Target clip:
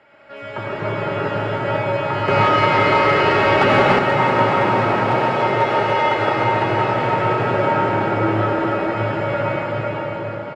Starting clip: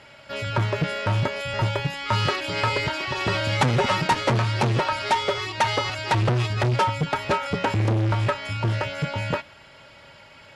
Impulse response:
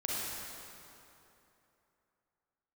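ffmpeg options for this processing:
-filter_complex "[0:a]acrossover=split=220 2300:gain=0.224 1 0.112[link_01][link_02][link_03];[link_01][link_02][link_03]amix=inputs=3:normalize=0,aecho=1:1:290|507.5|670.6|793|884.7:0.631|0.398|0.251|0.158|0.1[link_04];[1:a]atrim=start_sample=2205,asetrate=22491,aresample=44100[link_05];[link_04][link_05]afir=irnorm=-1:irlink=0,asettb=1/sr,asplit=3[link_06][link_07][link_08];[link_06]atrim=end=2.284[link_09];[link_07]atrim=start=2.28:end=3.99,asetpts=PTS-STARTPTS,afade=type=in:duration=0.004:curve=qsin,afade=type=out:start_time=1.706:duration=0.004:curve=qsin,acontrast=46[link_10];[link_08]atrim=start=3.986[link_11];[link_09][link_10]acrossfade=duration=0.004:curve1=hsin:curve2=qsin[link_12];[link_12][link_11]acrossfade=duration=0.004:curve1=qsin:curve2=hsin,bandreject=frequency=970:width=14,volume=-4dB"

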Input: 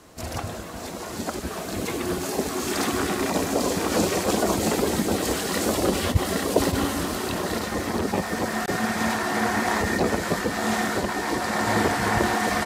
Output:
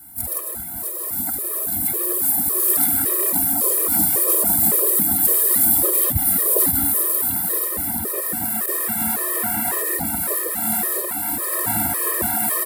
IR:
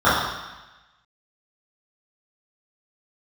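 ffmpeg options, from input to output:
-filter_complex "[0:a]equalizer=frequency=2800:width_type=o:width=0.2:gain=-10,asplit=2[link_01][link_02];[link_02]asetrate=66075,aresample=44100,atempo=0.66742,volume=-12dB[link_03];[link_01][link_03]amix=inputs=2:normalize=0,acrossover=split=330|3200[link_04][link_05][link_06];[link_06]aexciter=amount=13.3:drive=9.1:freq=9300[link_07];[link_04][link_05][link_07]amix=inputs=3:normalize=0,afftfilt=real='re*gt(sin(2*PI*1.8*pts/sr)*(1-2*mod(floor(b*sr/1024/330),2)),0)':imag='im*gt(sin(2*PI*1.8*pts/sr)*(1-2*mod(floor(b*sr/1024/330),2)),0)':win_size=1024:overlap=0.75,volume=-2dB"

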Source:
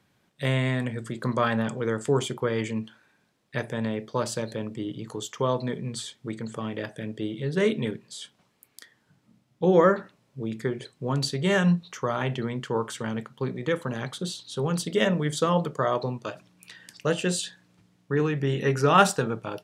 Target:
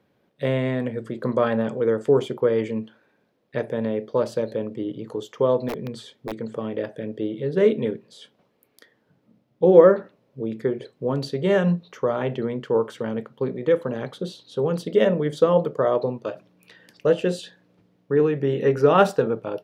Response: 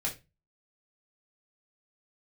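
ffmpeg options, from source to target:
-filter_complex "[0:a]asplit=3[link_01][link_02][link_03];[link_01]afade=type=out:start_time=5.68:duration=0.02[link_04];[link_02]aeval=exprs='(mod(14.1*val(0)+1,2)-1)/14.1':channel_layout=same,afade=type=in:start_time=5.68:duration=0.02,afade=type=out:start_time=6.44:duration=0.02[link_05];[link_03]afade=type=in:start_time=6.44:duration=0.02[link_06];[link_04][link_05][link_06]amix=inputs=3:normalize=0,equalizer=frequency=250:width_type=o:width=1:gain=4,equalizer=frequency=500:width_type=o:width=1:gain=11,equalizer=frequency=8000:width_type=o:width=1:gain=-11,volume=-3dB"

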